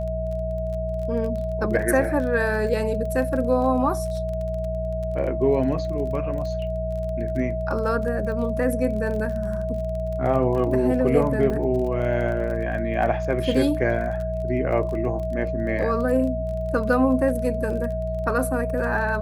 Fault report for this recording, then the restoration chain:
crackle 24/s -31 dBFS
hum 60 Hz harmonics 3 -29 dBFS
tone 640 Hz -27 dBFS
11.5 gap 3.1 ms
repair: de-click; de-hum 60 Hz, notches 3; notch 640 Hz, Q 30; interpolate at 11.5, 3.1 ms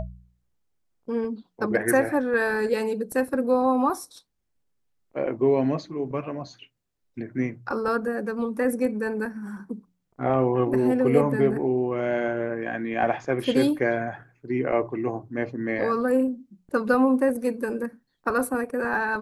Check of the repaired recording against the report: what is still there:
none

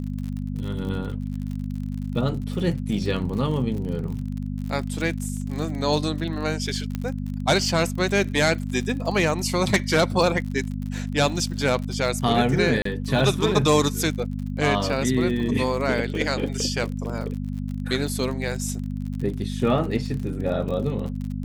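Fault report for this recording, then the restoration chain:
crackle 52/s -31 dBFS
hum 50 Hz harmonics 5 -29 dBFS
6.95 pop -15 dBFS
12.82–12.85 gap 34 ms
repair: de-click; de-hum 50 Hz, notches 5; interpolate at 12.82, 34 ms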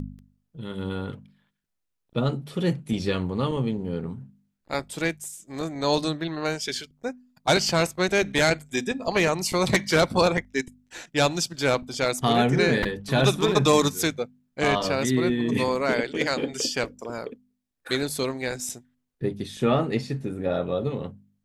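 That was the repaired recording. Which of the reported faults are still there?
none

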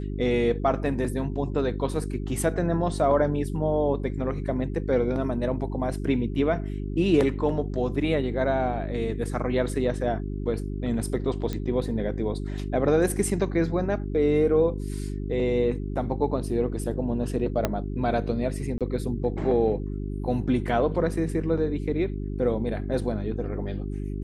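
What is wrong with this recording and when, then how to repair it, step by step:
hum 50 Hz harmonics 8 -31 dBFS
11.53 pop -17 dBFS
17.65 pop -9 dBFS
18.78–18.81 gap 27 ms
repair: de-click; de-hum 50 Hz, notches 8; interpolate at 18.78, 27 ms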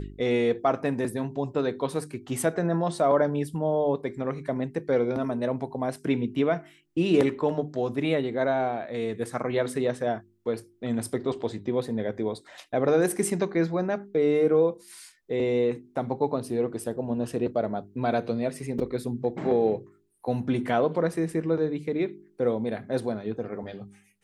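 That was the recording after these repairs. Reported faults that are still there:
11.53 pop
17.65 pop

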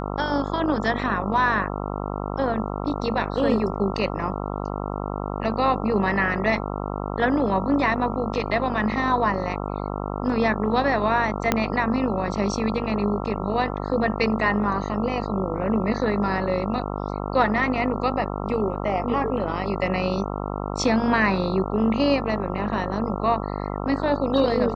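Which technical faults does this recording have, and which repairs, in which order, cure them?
buzz 50 Hz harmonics 27 -29 dBFS
11.52 pop -4 dBFS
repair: de-click; de-hum 50 Hz, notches 27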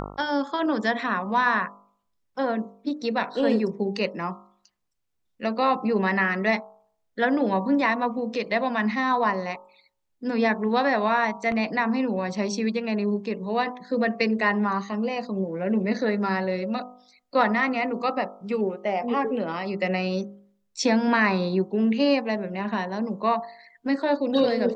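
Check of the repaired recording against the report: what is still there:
11.52 pop

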